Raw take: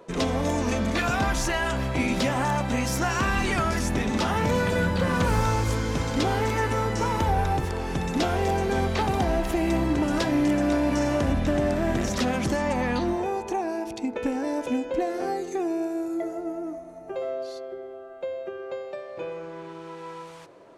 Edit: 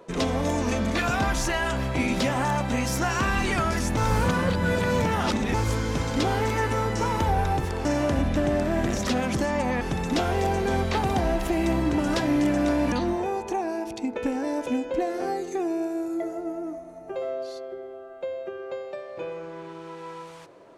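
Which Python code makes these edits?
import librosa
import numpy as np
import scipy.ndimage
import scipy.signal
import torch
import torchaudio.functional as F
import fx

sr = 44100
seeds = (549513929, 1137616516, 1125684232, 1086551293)

y = fx.edit(x, sr, fx.reverse_span(start_s=3.97, length_s=1.57),
    fx.move(start_s=10.96, length_s=1.96, to_s=7.85), tone=tone)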